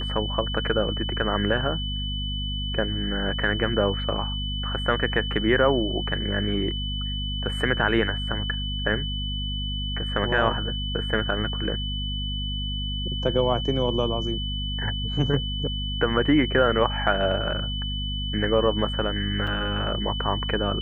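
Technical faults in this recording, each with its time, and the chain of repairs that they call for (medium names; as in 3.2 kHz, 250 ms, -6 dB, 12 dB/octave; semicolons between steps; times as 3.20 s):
hum 50 Hz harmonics 5 -30 dBFS
whine 3 kHz -31 dBFS
19.47 s: dropout 4.4 ms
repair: band-stop 3 kHz, Q 30; de-hum 50 Hz, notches 5; interpolate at 19.47 s, 4.4 ms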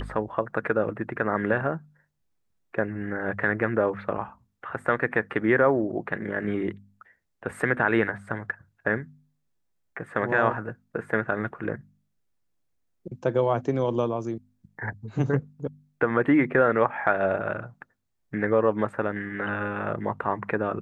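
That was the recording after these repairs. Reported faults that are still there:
nothing left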